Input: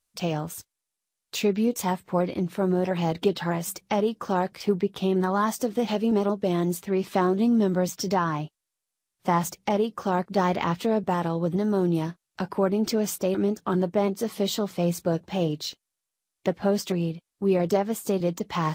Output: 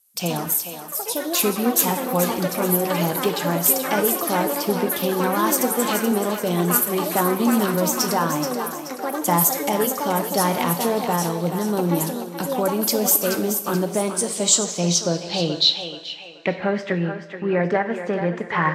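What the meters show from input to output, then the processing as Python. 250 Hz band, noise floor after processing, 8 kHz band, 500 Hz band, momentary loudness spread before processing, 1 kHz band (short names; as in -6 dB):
+2.0 dB, -35 dBFS, +15.5 dB, +2.5 dB, 6 LU, +5.0 dB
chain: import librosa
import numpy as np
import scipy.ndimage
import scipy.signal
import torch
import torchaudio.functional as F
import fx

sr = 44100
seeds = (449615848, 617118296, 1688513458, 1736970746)

y = scipy.signal.sosfilt(scipy.signal.butter(2, 55.0, 'highpass', fs=sr, output='sos'), x)
y = fx.high_shelf(y, sr, hz=4500.0, db=10.0)
y = fx.echo_pitch(y, sr, ms=137, semitones=6, count=3, db_per_echo=-6.0)
y = fx.low_shelf(y, sr, hz=110.0, db=-6.0)
y = fx.echo_thinned(y, sr, ms=429, feedback_pct=41, hz=420.0, wet_db=-8.0)
y = fx.filter_sweep_lowpass(y, sr, from_hz=12000.0, to_hz=1800.0, start_s=13.73, end_s=16.94, q=5.5)
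y = fx.rev_double_slope(y, sr, seeds[0], early_s=0.72, late_s=3.1, knee_db=-19, drr_db=9.5)
y = y * 10.0 ** (1.5 / 20.0)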